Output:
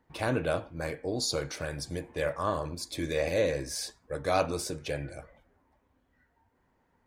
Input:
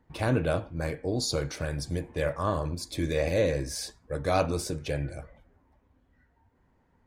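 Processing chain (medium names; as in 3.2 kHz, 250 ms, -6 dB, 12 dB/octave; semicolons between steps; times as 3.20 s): bass shelf 230 Hz -8.5 dB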